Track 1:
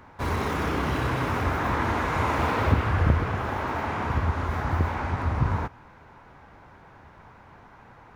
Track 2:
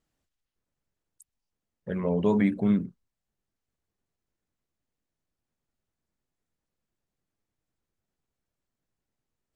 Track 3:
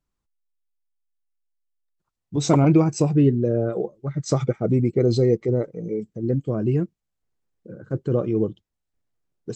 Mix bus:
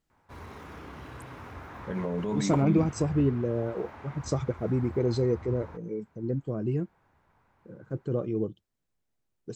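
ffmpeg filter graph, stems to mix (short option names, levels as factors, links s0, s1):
-filter_complex "[0:a]adelay=100,volume=0.133[s0];[1:a]volume=0.891[s1];[2:a]volume=0.422[s2];[s0][s1]amix=inputs=2:normalize=0,alimiter=limit=0.0708:level=0:latency=1:release=48,volume=1[s3];[s2][s3]amix=inputs=2:normalize=0"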